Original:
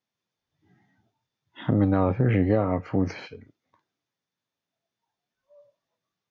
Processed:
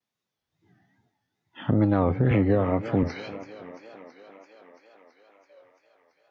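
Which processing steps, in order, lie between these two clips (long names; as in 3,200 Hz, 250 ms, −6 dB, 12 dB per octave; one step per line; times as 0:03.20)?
feedback echo with a high-pass in the loop 334 ms, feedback 77%, high-pass 240 Hz, level −14 dB
tape wow and flutter 110 cents
0:02.31–0:03.03: multiband upward and downward compressor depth 40%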